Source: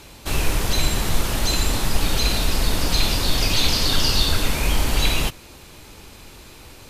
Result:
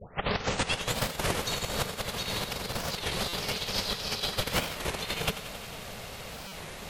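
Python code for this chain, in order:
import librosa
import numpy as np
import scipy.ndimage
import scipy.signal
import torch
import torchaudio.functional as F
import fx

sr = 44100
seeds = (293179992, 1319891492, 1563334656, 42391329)

y = fx.tape_start_head(x, sr, length_s=0.96)
y = fx.over_compress(y, sr, threshold_db=-25.0, ratio=-1.0)
y = scipy.signal.sosfilt(scipy.signal.butter(4, 110.0, 'highpass', fs=sr, output='sos'), y)
y = y * np.sin(2.0 * np.pi * 310.0 * np.arange(len(y)) / sr)
y = fx.bass_treble(y, sr, bass_db=2, treble_db=-4)
y = fx.echo_thinned(y, sr, ms=90, feedback_pct=78, hz=420.0, wet_db=-12.0)
y = fx.buffer_glitch(y, sr, at_s=(3.28, 6.49), block=256, repeats=8)
y = fx.record_warp(y, sr, rpm=33.33, depth_cents=250.0)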